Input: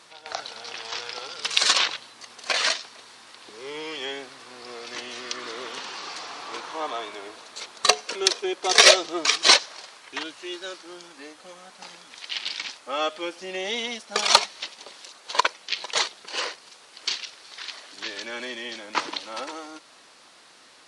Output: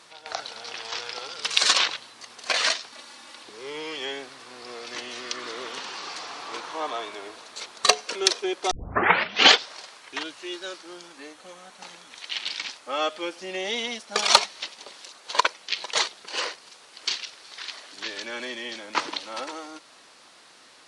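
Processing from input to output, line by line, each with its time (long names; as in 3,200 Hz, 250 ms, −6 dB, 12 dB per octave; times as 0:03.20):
0:02.92–0:03.43: comb filter 3.5 ms, depth 89%
0:08.71: tape start 1.02 s
0:11.17–0:12.51: notch filter 4,900 Hz, Q 13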